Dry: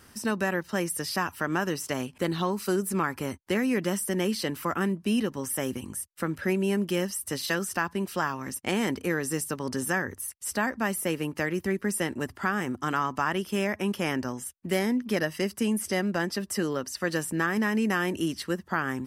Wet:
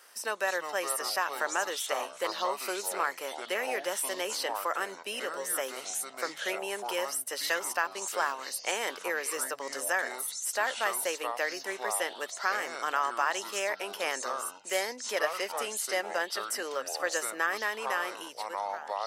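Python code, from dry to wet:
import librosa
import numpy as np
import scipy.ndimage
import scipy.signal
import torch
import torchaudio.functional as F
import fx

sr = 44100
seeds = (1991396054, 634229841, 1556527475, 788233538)

y = fx.fade_out_tail(x, sr, length_s=1.5)
y = fx.echo_pitch(y, sr, ms=246, semitones=-6, count=3, db_per_echo=-6.0)
y = scipy.signal.sosfilt(scipy.signal.cheby1(3, 1.0, 530.0, 'highpass', fs=sr, output='sos'), y)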